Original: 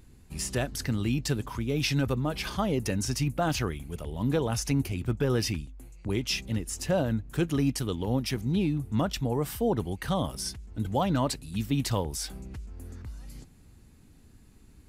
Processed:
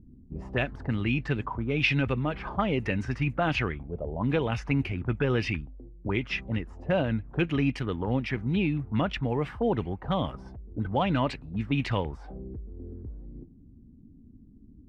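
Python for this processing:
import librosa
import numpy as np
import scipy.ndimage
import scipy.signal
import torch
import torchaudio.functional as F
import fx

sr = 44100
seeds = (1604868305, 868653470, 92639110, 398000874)

y = fx.envelope_lowpass(x, sr, base_hz=230.0, top_hz=2500.0, q=2.9, full_db=-24.5, direction='up')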